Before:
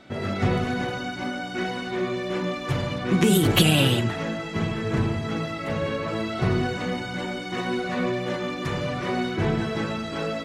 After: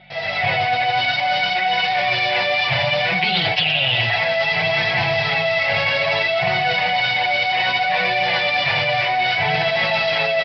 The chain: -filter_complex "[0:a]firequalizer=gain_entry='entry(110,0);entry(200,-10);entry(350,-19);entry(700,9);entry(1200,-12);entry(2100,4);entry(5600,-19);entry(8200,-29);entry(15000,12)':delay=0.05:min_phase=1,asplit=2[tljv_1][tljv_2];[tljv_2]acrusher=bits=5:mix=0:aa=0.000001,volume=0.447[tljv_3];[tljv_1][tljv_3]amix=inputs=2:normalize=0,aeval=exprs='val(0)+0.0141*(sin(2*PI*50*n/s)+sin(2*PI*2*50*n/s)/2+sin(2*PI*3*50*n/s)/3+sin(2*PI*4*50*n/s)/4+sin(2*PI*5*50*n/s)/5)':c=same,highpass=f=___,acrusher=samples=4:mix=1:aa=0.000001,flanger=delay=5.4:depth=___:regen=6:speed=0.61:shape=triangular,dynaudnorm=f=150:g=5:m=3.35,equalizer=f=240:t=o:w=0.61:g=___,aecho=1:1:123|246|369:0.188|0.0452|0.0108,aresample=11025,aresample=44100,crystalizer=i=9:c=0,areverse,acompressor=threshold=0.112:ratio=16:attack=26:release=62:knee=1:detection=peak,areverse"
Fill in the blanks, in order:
160, 3.2, -10.5